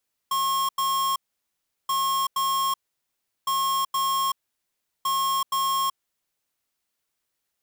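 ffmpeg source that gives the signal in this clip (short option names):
-f lavfi -i "aevalsrc='0.0631*(2*lt(mod(1080*t,1),0.5)-1)*clip(min(mod(mod(t,1.58),0.47),0.38-mod(mod(t,1.58),0.47))/0.005,0,1)*lt(mod(t,1.58),0.94)':d=6.32:s=44100"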